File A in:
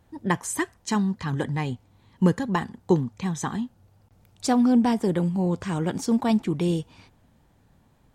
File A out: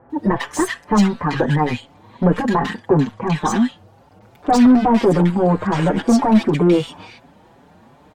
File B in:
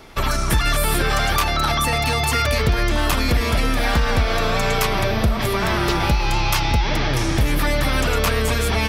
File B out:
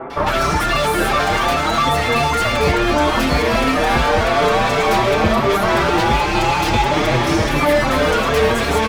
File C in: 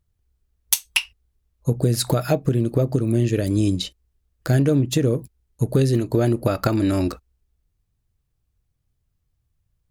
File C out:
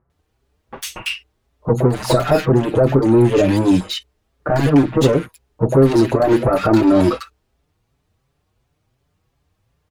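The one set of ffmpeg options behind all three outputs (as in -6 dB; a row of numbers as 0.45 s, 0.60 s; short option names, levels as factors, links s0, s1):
-filter_complex "[0:a]asplit=2[s0][s1];[s1]highpass=f=720:p=1,volume=39.8,asoftclip=type=tanh:threshold=0.891[s2];[s0][s2]amix=inputs=2:normalize=0,lowpass=f=1100:p=1,volume=0.501,acrossover=split=1600[s3][s4];[s4]adelay=100[s5];[s3][s5]amix=inputs=2:normalize=0,asplit=2[s6][s7];[s7]adelay=5.7,afreqshift=2.8[s8];[s6][s8]amix=inputs=2:normalize=1"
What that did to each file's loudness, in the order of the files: +8.0 LU, +4.0 LU, +5.5 LU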